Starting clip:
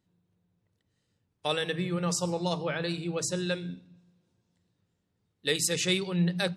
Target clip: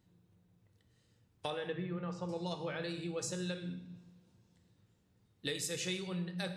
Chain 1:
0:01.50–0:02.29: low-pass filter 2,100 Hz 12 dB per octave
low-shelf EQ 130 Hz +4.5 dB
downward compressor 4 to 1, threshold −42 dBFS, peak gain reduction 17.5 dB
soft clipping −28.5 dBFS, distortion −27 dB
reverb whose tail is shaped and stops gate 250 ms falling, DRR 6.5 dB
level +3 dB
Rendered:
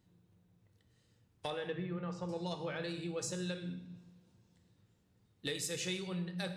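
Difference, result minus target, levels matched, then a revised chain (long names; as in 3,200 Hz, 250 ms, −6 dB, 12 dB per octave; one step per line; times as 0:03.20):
soft clipping: distortion +18 dB
0:01.50–0:02.29: low-pass filter 2,100 Hz 12 dB per octave
low-shelf EQ 130 Hz +4.5 dB
downward compressor 4 to 1, threshold −42 dBFS, peak gain reduction 17.5 dB
soft clipping −18.5 dBFS, distortion −45 dB
reverb whose tail is shaped and stops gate 250 ms falling, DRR 6.5 dB
level +3 dB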